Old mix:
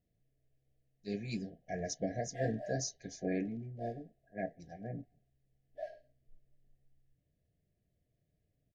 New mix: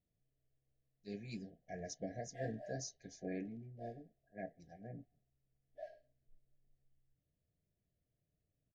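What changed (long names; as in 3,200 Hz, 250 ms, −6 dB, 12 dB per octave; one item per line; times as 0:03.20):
speech −7.5 dB
background −6.5 dB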